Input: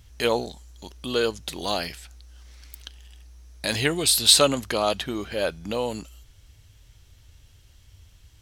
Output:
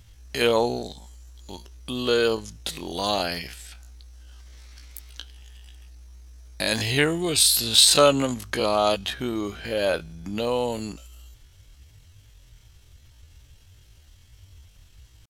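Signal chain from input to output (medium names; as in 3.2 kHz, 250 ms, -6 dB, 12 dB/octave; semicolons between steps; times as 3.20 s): tempo 0.55×; loudness maximiser +4.5 dB; trim -3 dB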